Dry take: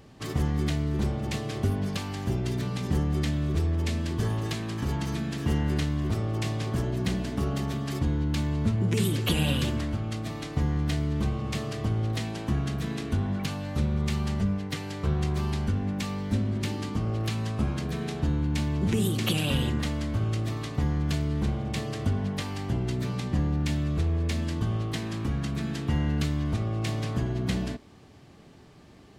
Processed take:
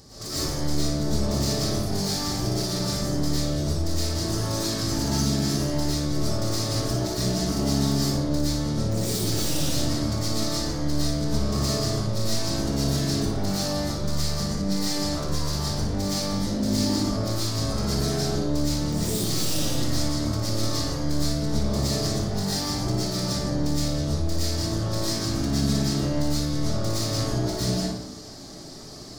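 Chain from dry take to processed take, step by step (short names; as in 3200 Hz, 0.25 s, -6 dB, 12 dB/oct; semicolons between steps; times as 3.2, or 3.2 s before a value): tracing distortion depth 0.11 ms; resonant high shelf 3700 Hz +10 dB, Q 3; limiter -22 dBFS, peak gain reduction 16.5 dB; soft clip -30 dBFS, distortion -12 dB; flutter echo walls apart 9.9 m, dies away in 0.42 s; digital reverb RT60 0.71 s, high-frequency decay 0.55×, pre-delay 75 ms, DRR -10 dB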